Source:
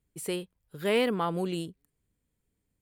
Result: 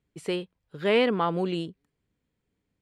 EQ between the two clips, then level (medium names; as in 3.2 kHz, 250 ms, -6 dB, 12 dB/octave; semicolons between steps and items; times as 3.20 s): low-pass 4.4 kHz 12 dB/octave; bass shelf 73 Hz -11 dB; +4.0 dB